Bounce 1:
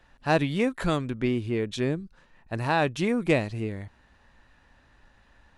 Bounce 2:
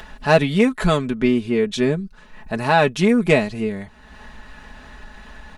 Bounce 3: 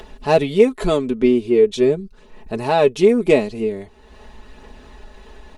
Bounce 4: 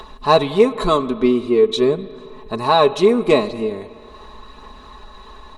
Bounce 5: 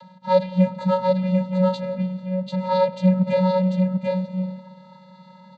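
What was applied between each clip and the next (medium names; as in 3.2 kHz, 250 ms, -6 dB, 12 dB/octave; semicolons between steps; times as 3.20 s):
in parallel at +2.5 dB: upward compressor, threshold -31 dBFS; on the sum: comb 4.7 ms, depth 68%; trim -1 dB
fifteen-band graphic EQ 160 Hz -4 dB, 400 Hz +10 dB, 1.6 kHz -8 dB; phaser 0.43 Hz, delay 4.1 ms, feedback 24%; trim -2 dB
small resonant body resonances 1.1/3.9 kHz, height 17 dB, ringing for 20 ms; on a send at -15 dB: reverberation RT60 2.2 s, pre-delay 49 ms; on the sum: trim -1 dB
vocoder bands 16, square 185 Hz; delay 742 ms -3.5 dB; trim -4 dB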